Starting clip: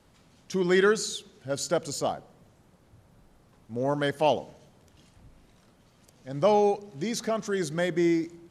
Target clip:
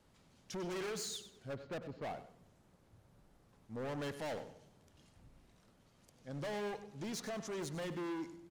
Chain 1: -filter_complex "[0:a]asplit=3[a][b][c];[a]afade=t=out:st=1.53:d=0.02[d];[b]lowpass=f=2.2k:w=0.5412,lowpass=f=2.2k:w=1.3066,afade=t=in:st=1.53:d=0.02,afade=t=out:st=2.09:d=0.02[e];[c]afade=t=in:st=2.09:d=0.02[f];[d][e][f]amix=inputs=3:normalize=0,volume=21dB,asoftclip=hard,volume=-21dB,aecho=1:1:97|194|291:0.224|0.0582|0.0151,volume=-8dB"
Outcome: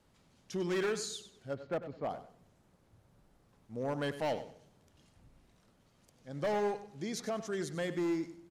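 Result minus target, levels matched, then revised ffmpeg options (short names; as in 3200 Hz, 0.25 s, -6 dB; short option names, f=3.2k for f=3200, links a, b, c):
overloaded stage: distortion -7 dB
-filter_complex "[0:a]asplit=3[a][b][c];[a]afade=t=out:st=1.53:d=0.02[d];[b]lowpass=f=2.2k:w=0.5412,lowpass=f=2.2k:w=1.3066,afade=t=in:st=1.53:d=0.02,afade=t=out:st=2.09:d=0.02[e];[c]afade=t=in:st=2.09:d=0.02[f];[d][e][f]amix=inputs=3:normalize=0,volume=31dB,asoftclip=hard,volume=-31dB,aecho=1:1:97|194|291:0.224|0.0582|0.0151,volume=-8dB"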